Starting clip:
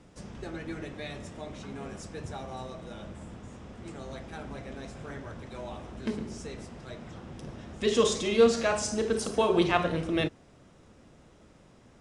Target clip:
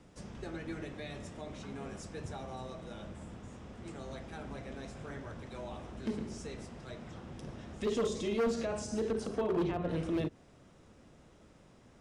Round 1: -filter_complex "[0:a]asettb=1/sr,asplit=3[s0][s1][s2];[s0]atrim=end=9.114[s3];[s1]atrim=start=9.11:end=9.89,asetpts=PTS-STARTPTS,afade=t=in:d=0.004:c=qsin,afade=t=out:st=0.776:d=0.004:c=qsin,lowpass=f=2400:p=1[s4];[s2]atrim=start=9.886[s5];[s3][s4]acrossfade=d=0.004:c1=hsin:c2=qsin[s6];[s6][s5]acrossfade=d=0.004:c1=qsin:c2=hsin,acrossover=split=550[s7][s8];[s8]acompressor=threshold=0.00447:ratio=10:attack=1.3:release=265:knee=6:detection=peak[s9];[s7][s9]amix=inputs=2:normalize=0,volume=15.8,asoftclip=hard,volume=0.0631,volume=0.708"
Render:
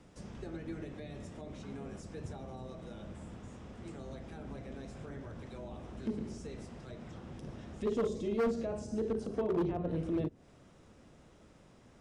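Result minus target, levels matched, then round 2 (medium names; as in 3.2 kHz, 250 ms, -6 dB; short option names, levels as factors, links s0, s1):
compression: peak gain reduction +10.5 dB
-filter_complex "[0:a]asettb=1/sr,asplit=3[s0][s1][s2];[s0]atrim=end=9.114[s3];[s1]atrim=start=9.11:end=9.89,asetpts=PTS-STARTPTS,afade=t=in:d=0.004:c=qsin,afade=t=out:st=0.776:d=0.004:c=qsin,lowpass=f=2400:p=1[s4];[s2]atrim=start=9.886[s5];[s3][s4]acrossfade=d=0.004:c1=hsin:c2=qsin[s6];[s6][s5]acrossfade=d=0.004:c1=qsin:c2=hsin,acrossover=split=550[s7][s8];[s8]acompressor=threshold=0.0168:ratio=10:attack=1.3:release=265:knee=6:detection=peak[s9];[s7][s9]amix=inputs=2:normalize=0,volume=15.8,asoftclip=hard,volume=0.0631,volume=0.708"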